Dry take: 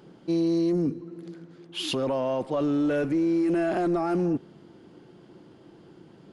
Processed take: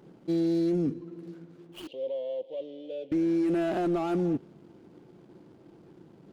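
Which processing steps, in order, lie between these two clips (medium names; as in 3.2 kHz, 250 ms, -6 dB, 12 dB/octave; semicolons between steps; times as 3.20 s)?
median filter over 25 samples; 1.87–3.12 s: two resonant band-passes 1.3 kHz, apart 2.6 oct; trim -2 dB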